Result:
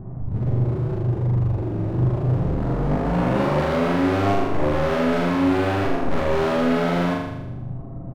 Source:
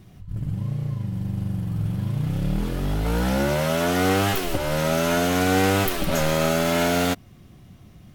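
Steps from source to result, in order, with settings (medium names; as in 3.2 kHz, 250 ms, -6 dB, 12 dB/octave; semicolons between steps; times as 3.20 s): low-pass 1.1 kHz 24 dB/octave; hum notches 50/100/150 Hz; comb 7.5 ms, depth 44%; in parallel at +2.5 dB: compression, threshold -33 dBFS, peak gain reduction 15.5 dB; on the sum: saturation -17 dBFS, distortion -14 dB; formant shift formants -2 st; hard clipper -27.5 dBFS, distortion -9 dB; flutter echo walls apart 6.9 m, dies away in 0.98 s; trim +5.5 dB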